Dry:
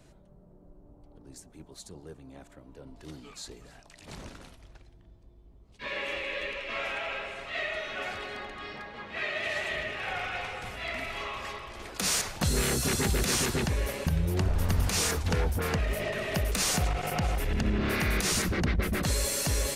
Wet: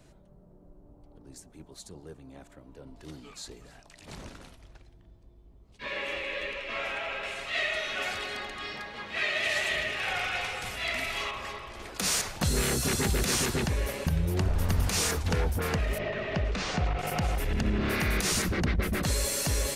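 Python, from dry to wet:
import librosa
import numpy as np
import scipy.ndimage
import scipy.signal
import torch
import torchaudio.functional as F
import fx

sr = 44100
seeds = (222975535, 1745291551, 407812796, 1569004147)

y = fx.high_shelf(x, sr, hz=2800.0, db=10.5, at=(7.23, 11.31))
y = fx.gaussian_blur(y, sr, sigma=1.9, at=(15.98, 16.99))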